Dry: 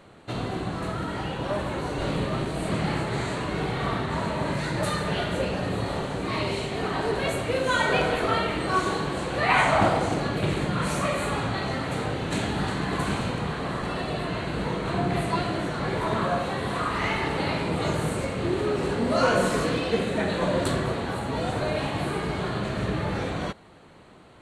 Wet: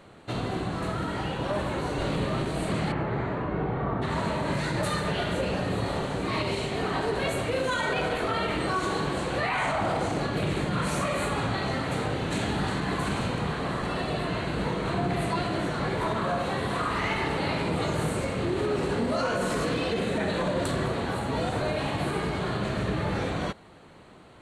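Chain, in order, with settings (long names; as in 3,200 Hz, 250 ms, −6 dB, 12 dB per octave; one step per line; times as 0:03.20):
0:02.91–0:04.01: low-pass filter 2,000 Hz → 1,100 Hz 12 dB per octave
brickwall limiter −18.5 dBFS, peak gain reduction 9.5 dB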